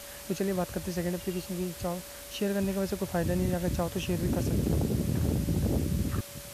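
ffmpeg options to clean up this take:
ffmpeg -i in.wav -af "bandreject=frequency=570:width=30,afwtdn=0.0063" out.wav

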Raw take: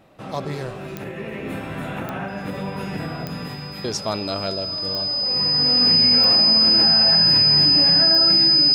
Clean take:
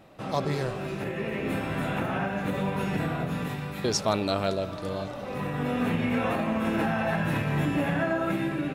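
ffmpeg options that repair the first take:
ffmpeg -i in.wav -af "adeclick=threshold=4,bandreject=frequency=5000:width=30" out.wav

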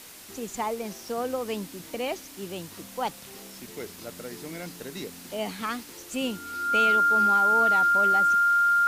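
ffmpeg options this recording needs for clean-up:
ffmpeg -i in.wav -af "bandreject=frequency=1400:width=30,afwtdn=0.0056" out.wav

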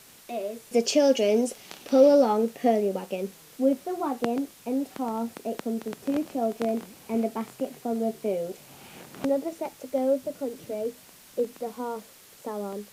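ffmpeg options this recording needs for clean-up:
ffmpeg -i in.wav -af "afftdn=noise_reduction=19:noise_floor=-52" out.wav

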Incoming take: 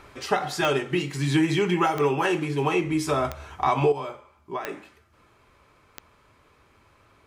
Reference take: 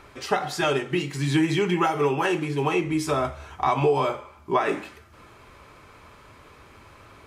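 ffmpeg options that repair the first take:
ffmpeg -i in.wav -af "adeclick=threshold=4,asetnsamples=nb_out_samples=441:pad=0,asendcmd='3.92 volume volume 9.5dB',volume=0dB" out.wav

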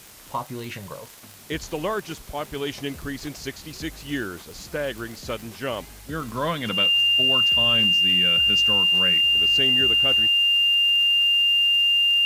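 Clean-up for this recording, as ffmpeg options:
ffmpeg -i in.wav -af "adeclick=threshold=4,bandreject=frequency=2800:width=30,afwtdn=0.005" out.wav

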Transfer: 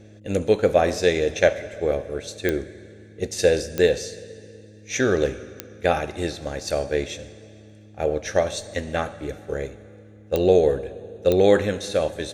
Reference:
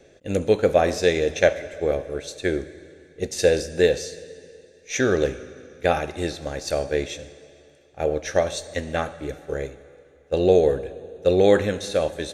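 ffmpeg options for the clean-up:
ffmpeg -i in.wav -af "adeclick=threshold=4,bandreject=frequency=105.5:width_type=h:width=4,bandreject=frequency=211:width_type=h:width=4,bandreject=frequency=316.5:width_type=h:width=4" out.wav

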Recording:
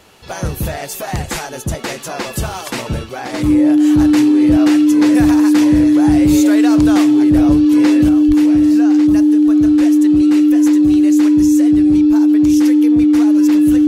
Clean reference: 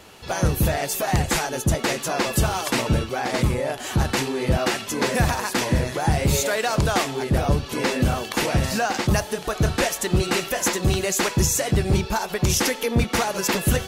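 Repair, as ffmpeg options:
ffmpeg -i in.wav -filter_complex "[0:a]bandreject=frequency=300:width=30,asplit=3[link_01][link_02][link_03];[link_01]afade=type=out:start_time=7.35:duration=0.02[link_04];[link_02]highpass=frequency=140:width=0.5412,highpass=frequency=140:width=1.3066,afade=type=in:start_time=7.35:duration=0.02,afade=type=out:start_time=7.47:duration=0.02[link_05];[link_03]afade=type=in:start_time=7.47:duration=0.02[link_06];[link_04][link_05][link_06]amix=inputs=3:normalize=0,asplit=3[link_07][link_08][link_09];[link_07]afade=type=out:start_time=8.27:duration=0.02[link_10];[link_08]highpass=frequency=140:width=0.5412,highpass=frequency=140:width=1.3066,afade=type=in:start_time=8.27:duration=0.02,afade=type=out:start_time=8.39:duration=0.02[link_11];[link_09]afade=type=in:start_time=8.39:duration=0.02[link_12];[link_10][link_11][link_12]amix=inputs=3:normalize=0,asetnsamples=nb_out_samples=441:pad=0,asendcmd='8.09 volume volume 7dB',volume=0dB" out.wav

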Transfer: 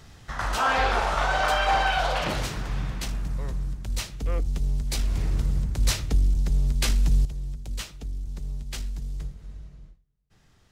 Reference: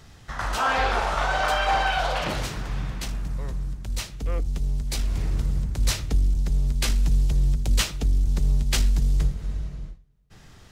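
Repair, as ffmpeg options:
ffmpeg -i in.wav -af "asetnsamples=nb_out_samples=441:pad=0,asendcmd='7.25 volume volume 11.5dB',volume=0dB" out.wav

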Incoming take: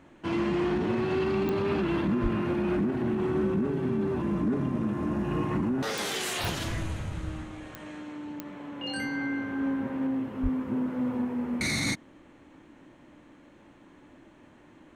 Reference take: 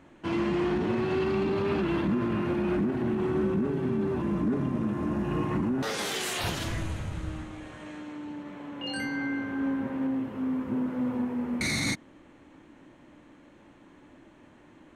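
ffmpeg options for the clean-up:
ffmpeg -i in.wav -filter_complex "[0:a]adeclick=threshold=4,asplit=3[link_01][link_02][link_03];[link_01]afade=type=out:start_time=2.22:duration=0.02[link_04];[link_02]highpass=frequency=140:width=0.5412,highpass=frequency=140:width=1.3066,afade=type=in:start_time=2.22:duration=0.02,afade=type=out:start_time=2.34:duration=0.02[link_05];[link_03]afade=type=in:start_time=2.34:duration=0.02[link_06];[link_04][link_05][link_06]amix=inputs=3:normalize=0,asplit=3[link_07][link_08][link_09];[link_07]afade=type=out:start_time=10.42:duration=0.02[link_10];[link_08]highpass=frequency=140:width=0.5412,highpass=frequency=140:width=1.3066,afade=type=in:start_time=10.42:duration=0.02,afade=type=out:start_time=10.54:duration=0.02[link_11];[link_09]afade=type=in:start_time=10.54:duration=0.02[link_12];[link_10][link_11][link_12]amix=inputs=3:normalize=0" out.wav

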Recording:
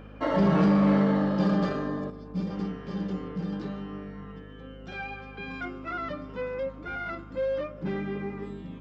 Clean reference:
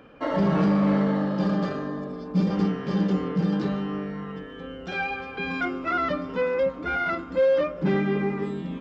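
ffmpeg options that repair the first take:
ffmpeg -i in.wav -af "bandreject=frequency=51.6:width_type=h:width=4,bandreject=frequency=103.2:width_type=h:width=4,bandreject=frequency=154.8:width_type=h:width=4,bandreject=frequency=206.4:width_type=h:width=4,bandreject=frequency=258:width_type=h:width=4,asetnsamples=nb_out_samples=441:pad=0,asendcmd='2.1 volume volume 8.5dB',volume=0dB" out.wav

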